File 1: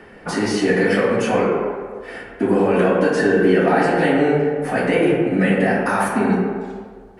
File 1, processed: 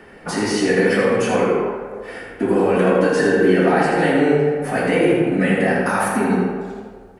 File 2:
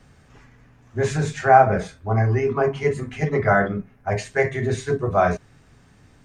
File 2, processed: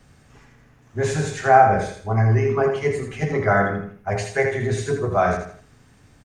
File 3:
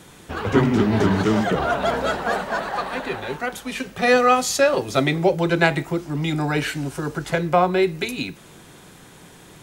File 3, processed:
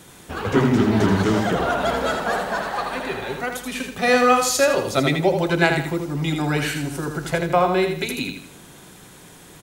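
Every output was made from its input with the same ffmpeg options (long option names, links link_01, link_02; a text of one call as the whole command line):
ffmpeg -i in.wav -af "highshelf=frequency=7200:gain=6,aecho=1:1:81|162|243|324:0.501|0.175|0.0614|0.0215,volume=-1dB" out.wav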